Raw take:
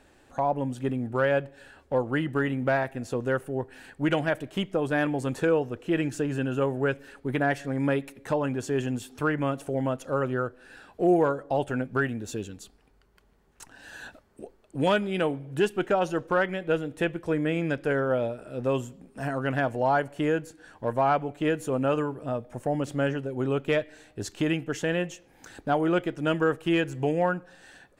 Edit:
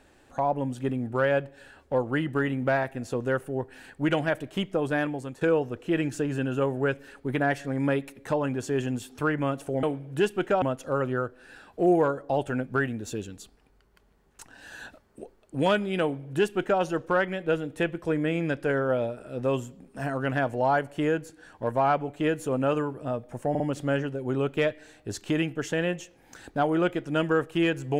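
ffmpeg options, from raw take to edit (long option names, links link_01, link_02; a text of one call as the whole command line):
ffmpeg -i in.wav -filter_complex "[0:a]asplit=6[link_01][link_02][link_03][link_04][link_05][link_06];[link_01]atrim=end=5.41,asetpts=PTS-STARTPTS,afade=type=out:start_time=4.9:duration=0.51:silence=0.211349[link_07];[link_02]atrim=start=5.41:end=9.832,asetpts=PTS-STARTPTS,afade=type=in:duration=0.004:curve=hsin:silence=0.211349[link_08];[link_03]atrim=start=15.228:end=16.022[link_09];[link_04]atrim=start=9.828:end=22.762[link_10];[link_05]atrim=start=22.708:end=22.762[link_11];[link_06]atrim=start=22.708[link_12];[link_07][link_08]concat=n=2:v=0:a=1[link_13];[link_13][link_09]acrossfade=duration=0.004:curve1=hsin:curve2=hsin[link_14];[link_14][link_10]acrossfade=duration=0.004:curve1=hsin:curve2=hsin[link_15];[link_15][link_11]acrossfade=duration=0.004:curve1=hsin:curve2=hsin[link_16];[link_16][link_12]acrossfade=duration=0.004:curve1=hsin:curve2=hsin" out.wav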